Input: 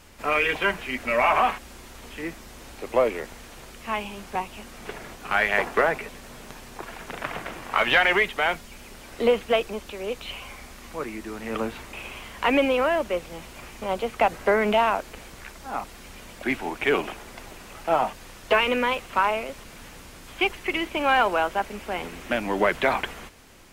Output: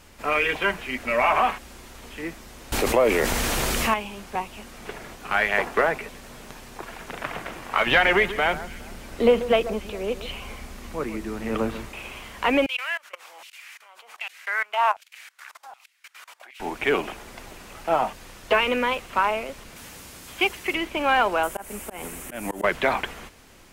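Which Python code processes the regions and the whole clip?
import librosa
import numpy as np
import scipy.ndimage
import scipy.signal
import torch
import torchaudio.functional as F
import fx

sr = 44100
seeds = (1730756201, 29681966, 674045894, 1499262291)

y = fx.chain(x, sr, fx.high_shelf(hz=8300.0, db=4.5),
    fx.env_flatten(amount_pct=70), at=(2.72, 3.94))
y = fx.chain(y, sr, fx.low_shelf(hz=380.0, db=6.5),
    fx.echo_alternate(ms=138, hz=1700.0, feedback_pct=53, wet_db=-13.0), at=(7.86, 11.89))
y = fx.chain(y, sr, fx.highpass(hz=260.0, slope=12),
    fx.level_steps(step_db=23),
    fx.filter_lfo_highpass(shape='saw_down', hz=1.3, low_hz=720.0, high_hz=3100.0, q=2.0), at=(12.66, 16.6))
y = fx.chain(y, sr, fx.highpass(hz=52.0, slope=12),
    fx.high_shelf(hz=5000.0, db=8.0), at=(19.76, 20.75))
y = fx.chain(y, sr, fx.high_shelf_res(hz=6600.0, db=12.5, q=1.5),
    fx.auto_swell(attack_ms=151.0), at=(21.43, 22.64))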